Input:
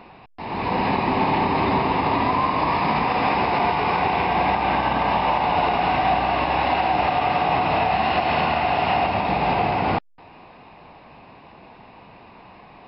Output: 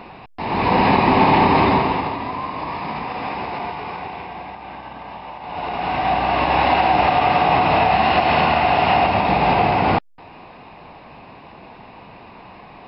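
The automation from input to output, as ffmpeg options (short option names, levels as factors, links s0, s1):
-af "volume=17.8,afade=t=out:st=1.56:d=0.6:silence=0.237137,afade=t=out:st=3.49:d=1.01:silence=0.398107,afade=t=in:st=5.41:d=0.32:silence=0.334965,afade=t=in:st=5.73:d=0.86:silence=0.354813"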